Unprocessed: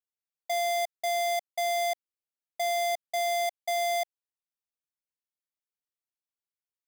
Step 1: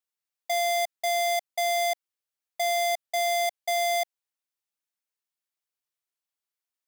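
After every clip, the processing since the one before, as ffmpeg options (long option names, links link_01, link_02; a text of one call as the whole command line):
ffmpeg -i in.wav -af "lowshelf=frequency=350:gain=-9.5,volume=4dB" out.wav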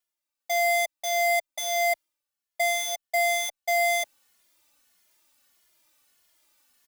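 ffmpeg -i in.wav -filter_complex "[0:a]aecho=1:1:3.4:0.56,areverse,acompressor=mode=upward:threshold=-48dB:ratio=2.5,areverse,asplit=2[link_01][link_02];[link_02]adelay=2.4,afreqshift=-1.6[link_03];[link_01][link_03]amix=inputs=2:normalize=1,volume=3.5dB" out.wav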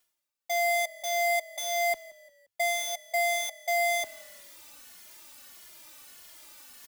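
ffmpeg -i in.wav -filter_complex "[0:a]areverse,acompressor=mode=upward:threshold=-31dB:ratio=2.5,areverse,asplit=4[link_01][link_02][link_03][link_04];[link_02]adelay=175,afreqshift=-39,volume=-21.5dB[link_05];[link_03]adelay=350,afreqshift=-78,volume=-28.4dB[link_06];[link_04]adelay=525,afreqshift=-117,volume=-35.4dB[link_07];[link_01][link_05][link_06][link_07]amix=inputs=4:normalize=0,volume=-3dB" out.wav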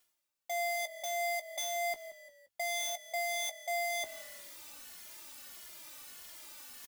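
ffmpeg -i in.wav -filter_complex "[0:a]alimiter=level_in=2.5dB:limit=-24dB:level=0:latency=1:release=126,volume=-2.5dB,volume=31.5dB,asoftclip=hard,volume=-31.5dB,asplit=2[link_01][link_02];[link_02]adelay=17,volume=-11dB[link_03];[link_01][link_03]amix=inputs=2:normalize=0" out.wav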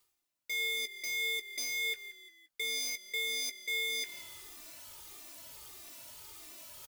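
ffmpeg -i in.wav -af "afftfilt=real='real(if(lt(b,272),68*(eq(floor(b/68),0)*3+eq(floor(b/68),1)*0+eq(floor(b/68),2)*1+eq(floor(b/68),3)*2)+mod(b,68),b),0)':imag='imag(if(lt(b,272),68*(eq(floor(b/68),0)*3+eq(floor(b/68),1)*0+eq(floor(b/68),2)*1+eq(floor(b/68),3)*2)+mod(b,68),b),0)':win_size=2048:overlap=0.75" out.wav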